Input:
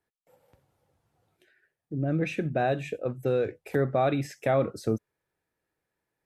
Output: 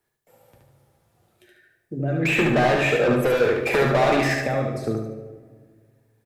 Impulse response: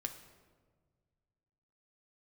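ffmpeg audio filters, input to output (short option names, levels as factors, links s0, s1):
-filter_complex "[0:a]acrossover=split=270|3100[s0][s1][s2];[s0]acompressor=threshold=0.0112:ratio=4[s3];[s1]acompressor=threshold=0.0282:ratio=4[s4];[s2]acompressor=threshold=0.001:ratio=4[s5];[s3][s4][s5]amix=inputs=3:normalize=0,highshelf=f=5800:g=6,asettb=1/sr,asplit=3[s6][s7][s8];[s6]atrim=end=2.254[s9];[s7]atrim=start=2.25:end=4.4,asetpts=PTS-STARTPTS,afade=t=in:d=0.004:c=qsin,afade=t=out:st=2.146:d=0.004:c=qsin,asplit=2[s10][s11];[s11]highpass=f=720:p=1,volume=31.6,asoftclip=type=tanh:threshold=0.119[s12];[s10][s12]amix=inputs=2:normalize=0,lowpass=f=2200:p=1,volume=0.501[s13];[s8]atrim=start=4.396[s14];[s9][s13]acrossfade=d=0.004:c1=hsin:c2=qsin[s15];[s15][s14]acrossfade=d=0.004:c1=qsin:c2=hsin,aecho=1:1:73|146|219|292|365:0.668|0.241|0.0866|0.0312|0.0112[s16];[1:a]atrim=start_sample=2205[s17];[s16][s17]afir=irnorm=-1:irlink=0,volume=2.37"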